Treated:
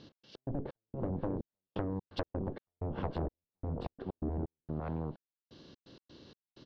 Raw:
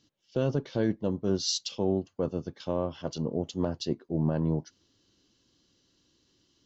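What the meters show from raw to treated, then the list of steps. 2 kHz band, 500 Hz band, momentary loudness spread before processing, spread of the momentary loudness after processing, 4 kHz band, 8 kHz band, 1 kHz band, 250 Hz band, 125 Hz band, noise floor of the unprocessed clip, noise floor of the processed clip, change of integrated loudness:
−6.0 dB, −10.0 dB, 6 LU, 20 LU, −18.5 dB, can't be measured, −3.0 dB, −9.0 dB, −6.5 dB, −71 dBFS, below −85 dBFS, −9.0 dB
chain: compressor on every frequency bin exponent 0.6
low-pass filter 4,000 Hz 24 dB per octave
noise gate −47 dBFS, range −10 dB
single-tap delay 509 ms −9 dB
harmonic generator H 3 −13 dB, 7 −12 dB, 8 −14 dB, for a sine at −11 dBFS
treble cut that deepens with the level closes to 400 Hz, closed at −21.5 dBFS
downward compressor 4 to 1, threshold −35 dBFS, peak gain reduction 12 dB
gate pattern "x.x.xx..xxxx...x" 128 BPM −60 dB
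level +2 dB

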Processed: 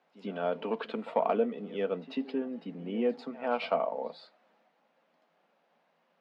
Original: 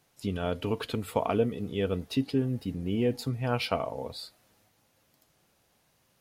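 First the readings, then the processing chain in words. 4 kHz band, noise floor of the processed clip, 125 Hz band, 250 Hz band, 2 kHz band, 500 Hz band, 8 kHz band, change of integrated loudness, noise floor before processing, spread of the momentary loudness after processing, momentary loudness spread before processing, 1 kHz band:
−8.0 dB, −73 dBFS, −16.5 dB, −4.5 dB, −2.5 dB, 0.0 dB, below −20 dB, −2.5 dB, −70 dBFS, 10 LU, 7 LU, +1.0 dB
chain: low-pass filter 3,300 Hz 12 dB per octave
mid-hump overdrive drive 11 dB, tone 2,100 Hz, clips at −11 dBFS
Chebyshev high-pass with heavy ripple 160 Hz, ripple 6 dB
backwards echo 95 ms −17.5 dB

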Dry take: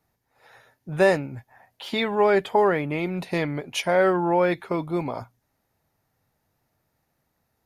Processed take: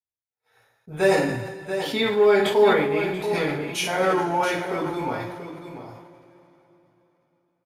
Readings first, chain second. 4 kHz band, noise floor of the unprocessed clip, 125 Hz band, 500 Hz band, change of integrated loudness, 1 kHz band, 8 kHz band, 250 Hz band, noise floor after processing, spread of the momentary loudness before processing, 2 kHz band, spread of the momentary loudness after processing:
+4.0 dB, −75 dBFS, −1.5 dB, +2.0 dB, +1.0 dB, +0.5 dB, +5.5 dB, 0.0 dB, below −85 dBFS, 15 LU, +2.0 dB, 19 LU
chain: downward expander −44 dBFS
high-shelf EQ 5,400 Hz +7 dB
single-tap delay 684 ms −9 dB
coupled-rooms reverb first 0.42 s, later 3.6 s, from −20 dB, DRR −5.5 dB
level that may fall only so fast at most 44 dB per second
level −7 dB

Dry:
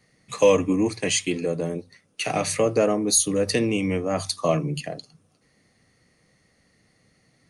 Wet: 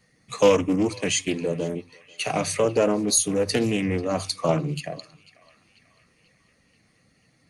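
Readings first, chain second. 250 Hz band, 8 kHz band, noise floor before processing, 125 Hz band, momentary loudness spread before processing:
0.0 dB, −1.0 dB, −65 dBFS, 0.0 dB, 13 LU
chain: spectral magnitudes quantised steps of 15 dB
feedback echo with a band-pass in the loop 490 ms, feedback 65%, band-pass 2,200 Hz, level −19.5 dB
highs frequency-modulated by the lows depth 0.21 ms

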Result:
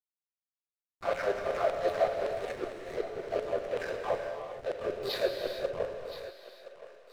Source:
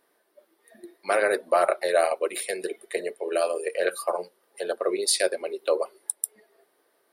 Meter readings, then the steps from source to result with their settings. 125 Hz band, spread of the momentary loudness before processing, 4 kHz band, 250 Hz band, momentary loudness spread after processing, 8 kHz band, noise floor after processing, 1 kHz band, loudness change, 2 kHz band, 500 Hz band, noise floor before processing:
can't be measured, 10 LU, −8.5 dB, −7.0 dB, 14 LU, below −20 dB, below −85 dBFS, −7.0 dB, −7.0 dB, −9.0 dB, −6.0 dB, −69 dBFS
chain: random phases in long frames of 200 ms
Chebyshev low-pass filter 4,200 Hz, order 4
parametric band 1,400 Hz −3 dB 1 octave
downward compressor 1.5 to 1, threshold −51 dBFS, peak gain reduction 11.5 dB
hard clipping −29 dBFS, distortion −20 dB
auto-filter high-pass saw down 5.3 Hz 330–3,500 Hz
slack as between gear wheels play −33.5 dBFS
on a send: feedback echo with a high-pass in the loop 1,021 ms, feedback 55%, high-pass 640 Hz, level −12.5 dB
on the sum: reverb whose tail is shaped and stops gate 480 ms flat, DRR 3 dB
level +3.5 dB

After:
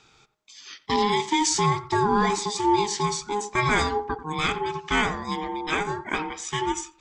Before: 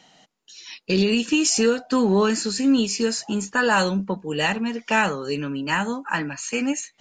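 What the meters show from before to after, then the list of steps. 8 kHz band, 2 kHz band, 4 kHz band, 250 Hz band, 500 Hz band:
−3.0 dB, −3.5 dB, −2.5 dB, −7.5 dB, −4.0 dB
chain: tape delay 89 ms, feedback 28%, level −12 dB, low-pass 1,200 Hz
ring modulation 620 Hz

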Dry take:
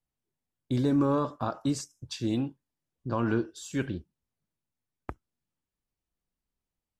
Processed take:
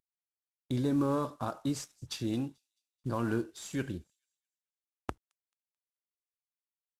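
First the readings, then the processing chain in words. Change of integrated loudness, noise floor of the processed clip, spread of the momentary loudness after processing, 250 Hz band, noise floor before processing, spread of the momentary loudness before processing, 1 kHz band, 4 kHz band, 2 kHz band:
−4.5 dB, below −85 dBFS, 15 LU, −4.0 dB, below −85 dBFS, 19 LU, −4.0 dB, −2.5 dB, −3.5 dB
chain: variable-slope delta modulation 64 kbit/s
camcorder AGC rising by 7.8 dB per second
on a send: delay with a high-pass on its return 218 ms, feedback 34%, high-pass 4,600 Hz, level −23.5 dB
on the sum: level −4 dB

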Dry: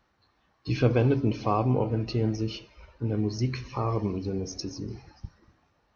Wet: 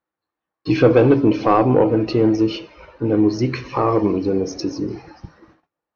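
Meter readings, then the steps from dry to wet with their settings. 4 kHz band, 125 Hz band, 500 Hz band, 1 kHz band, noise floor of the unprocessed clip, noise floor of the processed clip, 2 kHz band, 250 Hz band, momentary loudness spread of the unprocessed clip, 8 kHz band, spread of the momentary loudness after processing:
+6.5 dB, +3.5 dB, +13.0 dB, +11.0 dB, −70 dBFS, below −85 dBFS, +10.5 dB, +12.0 dB, 18 LU, can't be measured, 13 LU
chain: thirty-one-band graphic EQ 160 Hz +6 dB, 315 Hz +9 dB, 500 Hz +5 dB
mid-hump overdrive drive 16 dB, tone 1,500 Hz, clips at −6 dBFS
noise gate −56 dBFS, range −28 dB
level +5 dB

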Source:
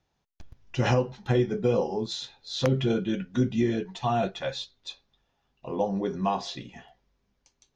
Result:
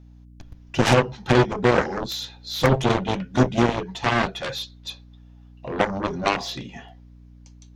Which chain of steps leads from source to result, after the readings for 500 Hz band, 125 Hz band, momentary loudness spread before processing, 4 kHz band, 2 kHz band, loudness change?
+4.5 dB, +4.5 dB, 13 LU, +6.5 dB, +12.5 dB, +5.5 dB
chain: harmonic generator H 7 −10 dB, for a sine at −12.5 dBFS
mains hum 60 Hz, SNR 23 dB
level +5 dB

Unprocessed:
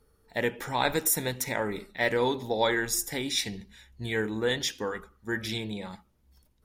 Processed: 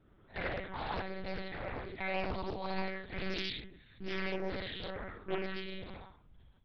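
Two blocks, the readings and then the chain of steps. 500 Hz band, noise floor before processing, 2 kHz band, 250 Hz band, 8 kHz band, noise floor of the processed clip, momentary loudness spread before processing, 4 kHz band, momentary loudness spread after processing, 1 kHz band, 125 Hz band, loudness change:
−10.0 dB, −67 dBFS, −9.0 dB, −8.5 dB, below −35 dB, −63 dBFS, 11 LU, −10.5 dB, 10 LU, −8.0 dB, −7.0 dB, −10.5 dB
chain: square-wave tremolo 1 Hz, depth 65%, duty 45%
downward compressor 6 to 1, threshold −34 dBFS, peak gain reduction 12.5 dB
reverb whose tail is shaped and stops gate 220 ms flat, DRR −7.5 dB
one-pitch LPC vocoder at 8 kHz 190 Hz
highs frequency-modulated by the lows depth 0.76 ms
level −5.5 dB

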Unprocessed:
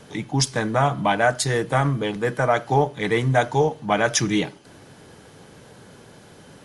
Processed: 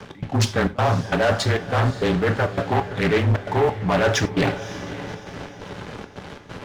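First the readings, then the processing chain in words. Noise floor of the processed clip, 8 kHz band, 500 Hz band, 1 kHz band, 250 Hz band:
−42 dBFS, −6.0 dB, +0.5 dB, −2.0 dB, +1.0 dB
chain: low-pass filter 3,500 Hz 12 dB per octave
leveller curve on the samples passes 3
reversed playback
downward compressor 6 to 1, threshold −24 dBFS, peak gain reduction 13 dB
reversed playback
frequency shifter −24 Hz
gate pattern "x.xxxx.x" 134 BPM −24 dB
on a send: feedback delay with all-pass diffusion 549 ms, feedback 47%, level −13.5 dB
on the sum: reverb whose tail is shaped and stops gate 120 ms falling, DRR 8.5 dB
highs frequency-modulated by the lows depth 0.46 ms
level +5 dB

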